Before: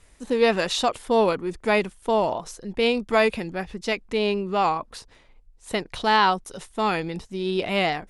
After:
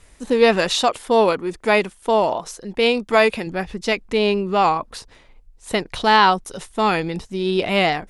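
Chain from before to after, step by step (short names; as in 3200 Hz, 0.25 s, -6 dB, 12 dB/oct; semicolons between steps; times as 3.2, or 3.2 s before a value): 0.76–3.47 low shelf 170 Hz -8 dB; gain +5 dB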